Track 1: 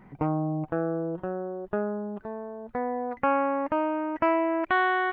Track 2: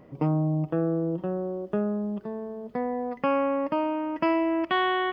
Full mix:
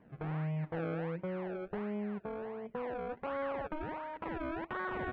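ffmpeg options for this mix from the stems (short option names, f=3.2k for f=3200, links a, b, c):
-filter_complex "[0:a]afwtdn=0.0178,acompressor=threshold=-33dB:ratio=6,volume=-4.5dB[a];[1:a]acrusher=samples=32:mix=1:aa=0.000001:lfo=1:lforange=32:lforate=1.4,lowpass=f=2.3k:w=0.5412,lowpass=f=2.3k:w=1.3066,volume=-11.5dB[b];[a][b]amix=inputs=2:normalize=0,alimiter=level_in=3.5dB:limit=-24dB:level=0:latency=1:release=230,volume=-3.5dB"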